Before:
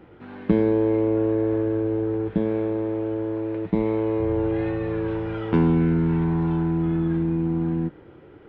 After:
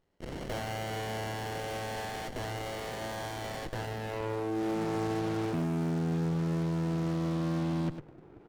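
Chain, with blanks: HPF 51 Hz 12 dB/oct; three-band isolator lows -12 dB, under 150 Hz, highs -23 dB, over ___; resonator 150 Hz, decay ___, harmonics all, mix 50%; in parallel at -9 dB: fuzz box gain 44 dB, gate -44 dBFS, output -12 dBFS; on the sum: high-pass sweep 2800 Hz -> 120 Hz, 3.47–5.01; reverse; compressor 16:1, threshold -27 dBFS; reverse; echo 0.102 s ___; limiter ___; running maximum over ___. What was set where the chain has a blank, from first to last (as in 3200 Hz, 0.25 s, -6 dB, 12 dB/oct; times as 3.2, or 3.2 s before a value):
2700 Hz, 1 s, -12.5 dB, -24 dBFS, 33 samples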